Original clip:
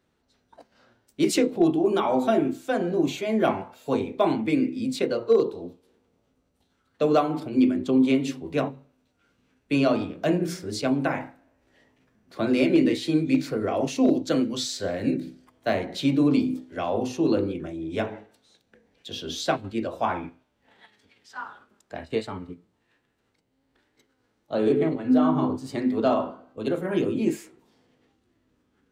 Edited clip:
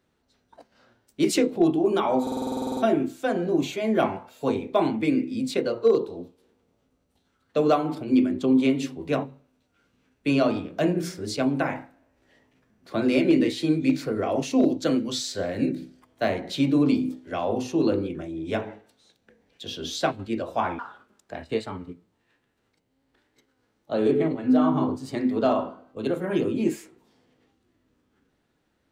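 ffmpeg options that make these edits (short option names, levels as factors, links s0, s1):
-filter_complex "[0:a]asplit=13[s0][s1][s2][s3][s4][s5][s6][s7][s8][s9][s10][s11][s12];[s0]atrim=end=2.272[s13];[s1]atrim=start=2.218:end=2.272[s14];[s2]atrim=start=2.218:end=2.272[s15];[s3]atrim=start=2.218:end=2.272[s16];[s4]atrim=start=2.218:end=2.272[s17];[s5]atrim=start=2.218:end=2.272[s18];[s6]atrim=start=2.218:end=2.272[s19];[s7]atrim=start=2.218:end=2.272[s20];[s8]atrim=start=2.218:end=2.272[s21];[s9]atrim=start=2.218:end=2.272[s22];[s10]atrim=start=2.218:end=2.272[s23];[s11]atrim=start=2.218:end=20.242[s24];[s12]atrim=start=21.398[s25];[s13][s14]acrossfade=d=0.004:c1=hsin:c2=hsin[s26];[s26][s15]acrossfade=d=0.004:c1=hsin:c2=hsin[s27];[s27][s16]acrossfade=d=0.004:c1=hsin:c2=hsin[s28];[s28][s17]acrossfade=d=0.004:c1=hsin:c2=hsin[s29];[s29][s18]acrossfade=d=0.004:c1=hsin:c2=hsin[s30];[s30][s19]acrossfade=d=0.004:c1=hsin:c2=hsin[s31];[s31][s20]acrossfade=d=0.004:c1=hsin:c2=hsin[s32];[s32][s21]acrossfade=d=0.004:c1=hsin:c2=hsin[s33];[s33][s22]acrossfade=d=0.004:c1=hsin:c2=hsin[s34];[s34][s23]acrossfade=d=0.004:c1=hsin:c2=hsin[s35];[s35][s24]acrossfade=d=0.004:c1=hsin:c2=hsin[s36];[s36][s25]acrossfade=d=0.004:c1=hsin:c2=hsin"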